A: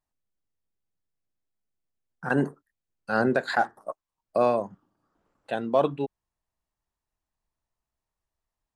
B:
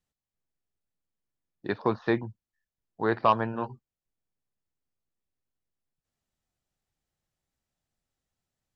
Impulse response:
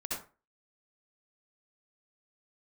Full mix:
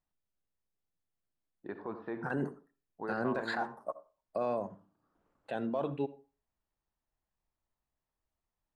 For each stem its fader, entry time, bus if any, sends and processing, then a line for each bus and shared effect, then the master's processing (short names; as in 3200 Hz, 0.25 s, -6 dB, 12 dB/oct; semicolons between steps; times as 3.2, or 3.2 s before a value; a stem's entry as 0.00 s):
-3.5 dB, 0.00 s, send -18.5 dB, limiter -21.5 dBFS, peak gain reduction 11 dB
-8.5 dB, 0.00 s, send -9.5 dB, Bessel low-pass 1800 Hz, order 2; bell 110 Hz -11 dB 0.98 oct; limiter -22.5 dBFS, peak gain reduction 11 dB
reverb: on, RT60 0.35 s, pre-delay 58 ms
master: high shelf 4300 Hz -8 dB